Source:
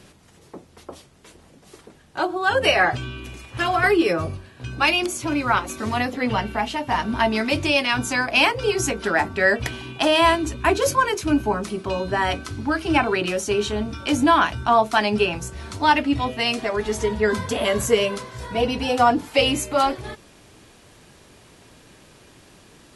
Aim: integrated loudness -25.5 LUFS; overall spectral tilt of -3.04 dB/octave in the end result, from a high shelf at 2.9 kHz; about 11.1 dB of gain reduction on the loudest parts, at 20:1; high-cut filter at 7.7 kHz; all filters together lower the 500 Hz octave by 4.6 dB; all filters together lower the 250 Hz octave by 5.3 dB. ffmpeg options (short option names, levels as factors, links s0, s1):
-af "lowpass=7700,equalizer=f=250:t=o:g=-5,equalizer=f=500:t=o:g=-5,highshelf=f=2900:g=5.5,acompressor=threshold=0.0708:ratio=20,volume=1.33"